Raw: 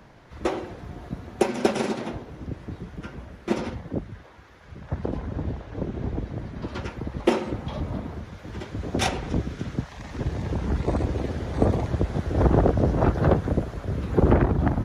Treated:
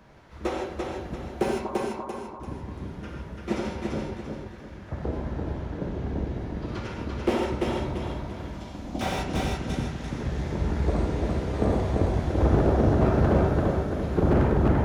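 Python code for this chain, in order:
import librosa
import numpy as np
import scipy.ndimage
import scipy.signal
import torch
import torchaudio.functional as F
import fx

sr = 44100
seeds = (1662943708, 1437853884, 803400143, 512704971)

y = fx.ladder_lowpass(x, sr, hz=1100.0, resonance_pct=80, at=(1.54, 2.4))
y = fx.fixed_phaser(y, sr, hz=430.0, stages=6, at=(8.54, 9.01))
y = fx.echo_feedback(y, sr, ms=341, feedback_pct=38, wet_db=-3.5)
y = fx.rev_gated(y, sr, seeds[0], gate_ms=180, shape='flat', drr_db=-0.5)
y = fx.slew_limit(y, sr, full_power_hz=110.0)
y = y * librosa.db_to_amplitude(-4.5)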